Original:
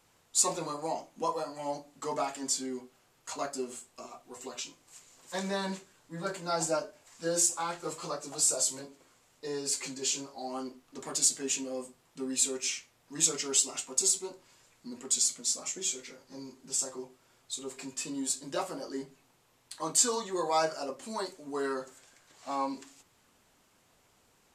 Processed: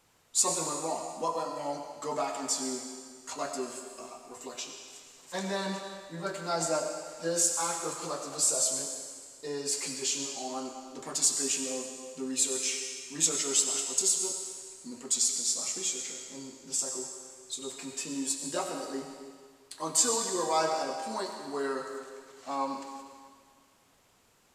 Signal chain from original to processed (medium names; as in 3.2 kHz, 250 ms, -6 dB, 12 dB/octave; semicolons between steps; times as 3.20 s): on a send: high-pass 360 Hz 6 dB/octave + reverberation RT60 1.8 s, pre-delay 51 ms, DRR 4.5 dB